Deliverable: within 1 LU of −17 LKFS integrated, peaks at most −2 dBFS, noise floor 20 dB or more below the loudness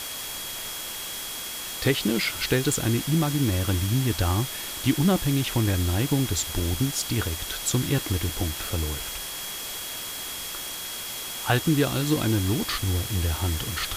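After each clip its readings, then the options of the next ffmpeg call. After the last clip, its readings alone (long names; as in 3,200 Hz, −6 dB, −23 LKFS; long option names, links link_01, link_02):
interfering tone 3,300 Hz; level of the tone −39 dBFS; background noise floor −35 dBFS; target noise floor −46 dBFS; integrated loudness −26.0 LKFS; sample peak −8.5 dBFS; target loudness −17.0 LKFS
→ -af "bandreject=frequency=3300:width=30"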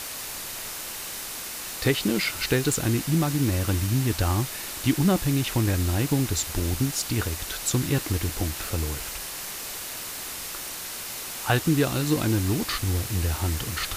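interfering tone none found; background noise floor −35 dBFS; target noise floor −46 dBFS
→ -af "afftdn=noise_reduction=11:noise_floor=-35"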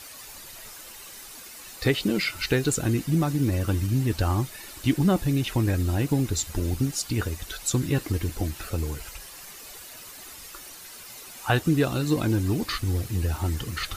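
background noise floor −44 dBFS; target noise floor −46 dBFS
→ -af "afftdn=noise_reduction=6:noise_floor=-44"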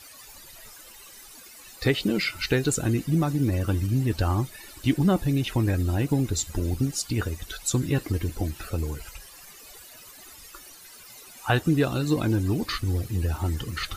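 background noise floor −47 dBFS; integrated loudness −26.0 LKFS; sample peak −9.5 dBFS; target loudness −17.0 LKFS
→ -af "volume=9dB,alimiter=limit=-2dB:level=0:latency=1"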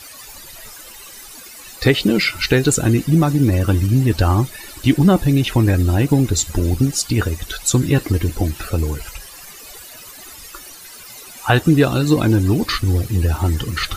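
integrated loudness −17.0 LKFS; sample peak −2.0 dBFS; background noise floor −38 dBFS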